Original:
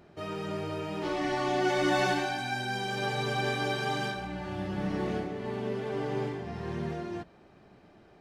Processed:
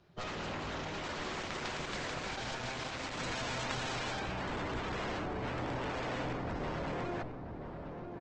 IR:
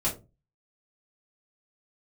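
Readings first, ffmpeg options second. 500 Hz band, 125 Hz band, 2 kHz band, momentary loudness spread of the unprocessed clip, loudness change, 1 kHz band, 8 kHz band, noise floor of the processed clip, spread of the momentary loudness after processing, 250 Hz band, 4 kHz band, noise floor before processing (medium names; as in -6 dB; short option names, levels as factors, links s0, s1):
-8.0 dB, -5.5 dB, -5.5 dB, 10 LU, -6.5 dB, -6.0 dB, -1.0 dB, -45 dBFS, 5 LU, -7.5 dB, -4.0 dB, -57 dBFS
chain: -filter_complex "[0:a]afftdn=nr=14:nf=-41,acrossover=split=2900[s0][s1];[s1]acompressor=threshold=0.00224:ratio=4:attack=1:release=60[s2];[s0][s2]amix=inputs=2:normalize=0,equalizer=f=125:t=o:w=1:g=4,equalizer=f=250:t=o:w=1:g=-10,equalizer=f=500:t=o:w=1:g=-3,equalizer=f=4000:t=o:w=1:g=6,acrossover=split=120|1000[s3][s4][s5];[s3]acompressor=threshold=0.00708:ratio=4[s6];[s4]acompressor=threshold=0.0178:ratio=4[s7];[s5]acompressor=threshold=0.00708:ratio=4[s8];[s6][s7][s8]amix=inputs=3:normalize=0,aeval=exprs='0.075*(cos(1*acos(clip(val(0)/0.075,-1,1)))-cos(1*PI/2))+0.0119*(cos(3*acos(clip(val(0)/0.075,-1,1)))-cos(3*PI/2))+0.0376*(cos(6*acos(clip(val(0)/0.075,-1,1)))-cos(6*PI/2))+0.0168*(cos(7*acos(clip(val(0)/0.075,-1,1)))-cos(7*PI/2))+0.0119*(cos(8*acos(clip(val(0)/0.075,-1,1)))-cos(8*PI/2))':c=same,aresample=16000,aeval=exprs='clip(val(0),-1,0.0119)':c=same,aresample=44100,asplit=2[s9][s10];[s10]adelay=986,lowpass=f=860:p=1,volume=0.531,asplit=2[s11][s12];[s12]adelay=986,lowpass=f=860:p=1,volume=0.55,asplit=2[s13][s14];[s14]adelay=986,lowpass=f=860:p=1,volume=0.55,asplit=2[s15][s16];[s16]adelay=986,lowpass=f=860:p=1,volume=0.55,asplit=2[s17][s18];[s18]adelay=986,lowpass=f=860:p=1,volume=0.55,asplit=2[s19][s20];[s20]adelay=986,lowpass=f=860:p=1,volume=0.55,asplit=2[s21][s22];[s22]adelay=986,lowpass=f=860:p=1,volume=0.55[s23];[s9][s11][s13][s15][s17][s19][s21][s23]amix=inputs=8:normalize=0,volume=2" -ar 48000 -c:a libopus -b:a 16k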